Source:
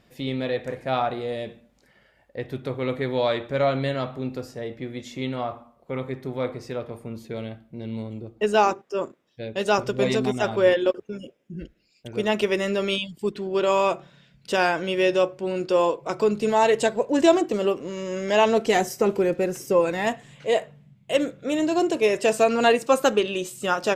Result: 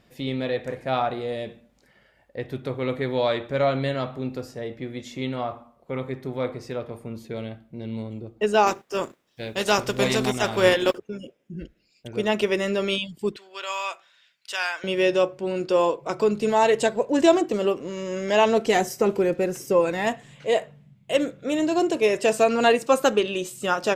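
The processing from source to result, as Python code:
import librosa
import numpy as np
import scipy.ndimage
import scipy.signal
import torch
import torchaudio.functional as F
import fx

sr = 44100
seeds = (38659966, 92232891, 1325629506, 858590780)

y = fx.spec_flatten(x, sr, power=0.7, at=(8.66, 10.97), fade=0.02)
y = fx.highpass(y, sr, hz=1400.0, slope=12, at=(13.36, 14.84))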